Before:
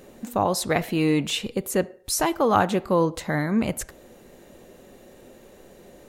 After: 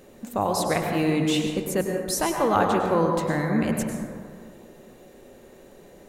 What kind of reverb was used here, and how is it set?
plate-style reverb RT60 2 s, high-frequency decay 0.3×, pre-delay 90 ms, DRR 2 dB; trim -2.5 dB

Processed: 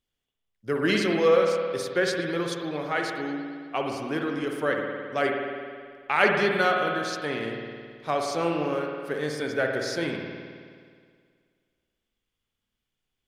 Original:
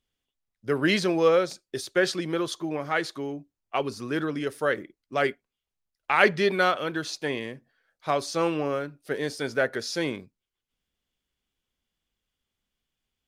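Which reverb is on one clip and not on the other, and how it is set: spring tank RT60 2 s, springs 53 ms, chirp 65 ms, DRR 1.5 dB; trim -2 dB

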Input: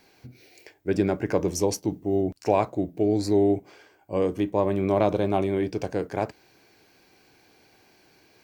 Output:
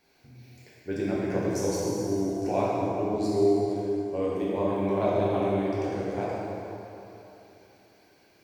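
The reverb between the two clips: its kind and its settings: plate-style reverb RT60 3.2 s, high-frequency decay 0.75×, DRR -7.5 dB; trim -10.5 dB

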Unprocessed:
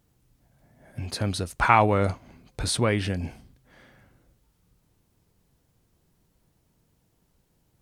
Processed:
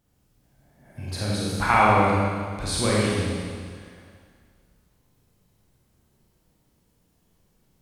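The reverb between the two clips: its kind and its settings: Schroeder reverb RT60 1.9 s, combs from 30 ms, DRR -6 dB; trim -4.5 dB

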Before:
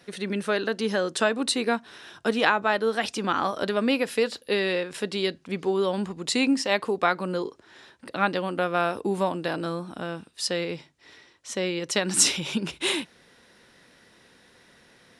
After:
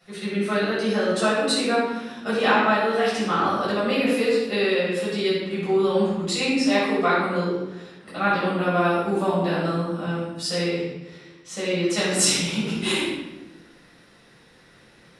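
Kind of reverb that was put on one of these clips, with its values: simulated room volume 580 m³, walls mixed, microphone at 6.7 m; trim -10.5 dB

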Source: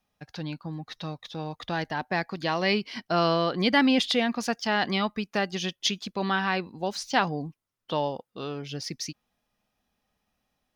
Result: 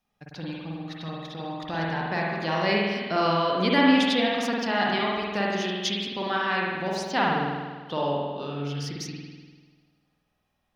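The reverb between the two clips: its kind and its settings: spring tank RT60 1.5 s, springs 49 ms, chirp 30 ms, DRR -3.5 dB; trim -3 dB

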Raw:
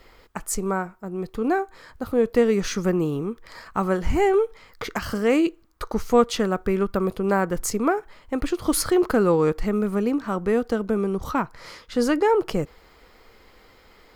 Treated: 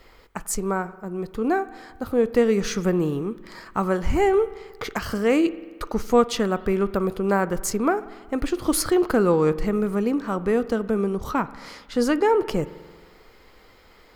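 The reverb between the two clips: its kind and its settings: spring tank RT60 1.5 s, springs 45 ms, chirp 55 ms, DRR 16 dB

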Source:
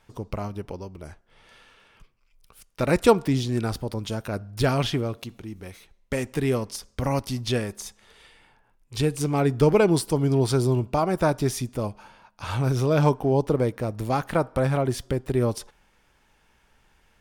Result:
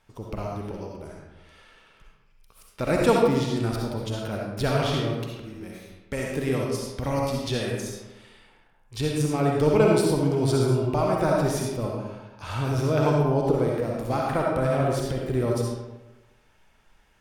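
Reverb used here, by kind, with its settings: algorithmic reverb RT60 1.1 s, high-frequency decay 0.65×, pre-delay 25 ms, DRR -2 dB; trim -4 dB

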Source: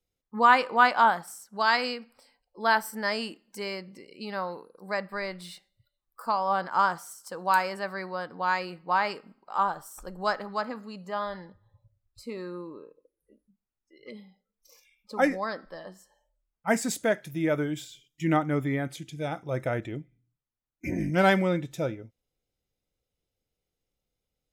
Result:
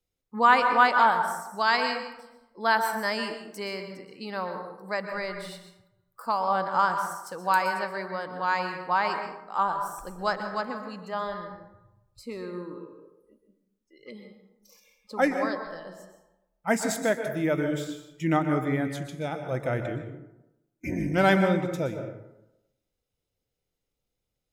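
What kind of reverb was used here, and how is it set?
plate-style reverb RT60 0.9 s, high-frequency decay 0.45×, pre-delay 110 ms, DRR 6.5 dB

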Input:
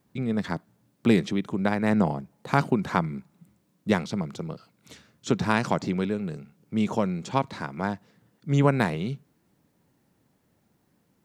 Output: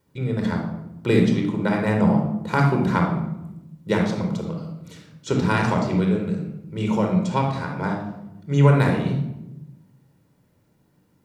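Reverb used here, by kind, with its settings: simulated room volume 3100 m³, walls furnished, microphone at 4.7 m; trim -1.5 dB

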